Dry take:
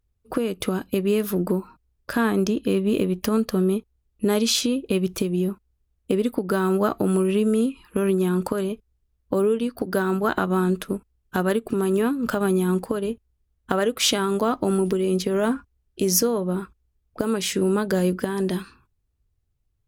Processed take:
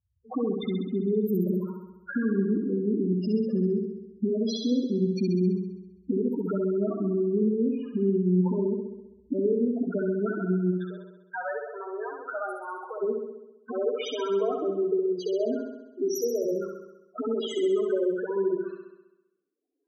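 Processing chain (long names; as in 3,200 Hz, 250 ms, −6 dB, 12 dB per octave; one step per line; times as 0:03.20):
camcorder AGC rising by 12 dB per second
high-pass filter 76 Hz 24 dB per octave, from 0:10.71 600 Hz, from 0:13.01 270 Hz
downward compressor 3 to 1, threshold −23 dBFS, peak gain reduction 6.5 dB
spectral peaks only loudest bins 4
flutter between parallel walls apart 11.3 metres, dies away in 0.95 s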